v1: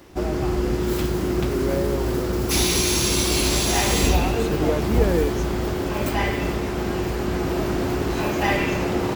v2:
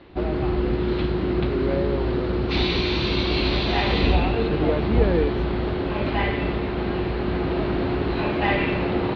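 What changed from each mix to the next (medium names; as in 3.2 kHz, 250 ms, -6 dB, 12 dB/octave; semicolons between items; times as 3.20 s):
master: add Chebyshev low-pass 4.2 kHz, order 5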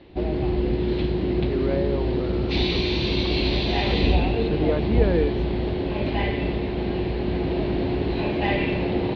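background: add peaking EQ 1.3 kHz -12.5 dB 0.69 oct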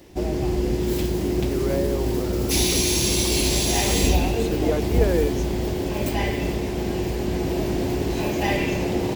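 speech: add steep high-pass 260 Hz 72 dB/octave; master: remove Chebyshev low-pass 4.2 kHz, order 5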